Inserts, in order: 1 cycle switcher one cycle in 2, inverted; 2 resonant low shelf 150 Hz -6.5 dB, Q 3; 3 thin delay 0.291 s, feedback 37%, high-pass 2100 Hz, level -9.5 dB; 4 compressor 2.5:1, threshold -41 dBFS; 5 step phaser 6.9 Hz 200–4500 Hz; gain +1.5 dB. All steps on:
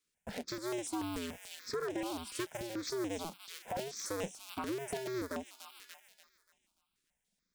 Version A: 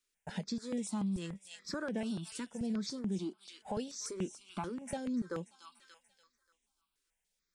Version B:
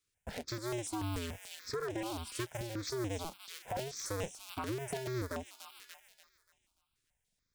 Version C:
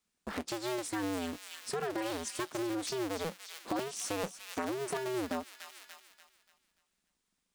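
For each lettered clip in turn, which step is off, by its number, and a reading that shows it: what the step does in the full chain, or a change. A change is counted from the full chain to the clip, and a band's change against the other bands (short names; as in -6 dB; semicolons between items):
1, 125 Hz band +9.5 dB; 2, 125 Hz band +9.0 dB; 5, loudness change +3.0 LU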